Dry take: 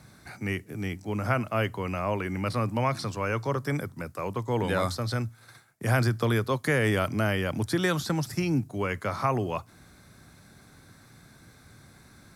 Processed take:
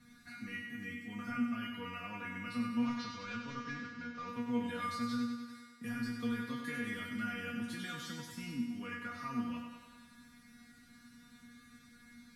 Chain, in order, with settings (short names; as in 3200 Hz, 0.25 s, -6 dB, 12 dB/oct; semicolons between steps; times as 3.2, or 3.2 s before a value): 2.84–4.28 CVSD 32 kbps; band shelf 620 Hz -13 dB; in parallel at -0.5 dB: compressor, threshold -41 dBFS, peak gain reduction 19 dB; on the sum: limiter -19 dBFS, peak gain reduction 9 dB; high shelf 3900 Hz -8.5 dB; notches 50/100 Hz; resonator 240 Hz, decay 0.36 s, harmonics all, mix 100%; thinning echo 97 ms, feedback 66%, high-pass 160 Hz, level -6 dB; gain +6 dB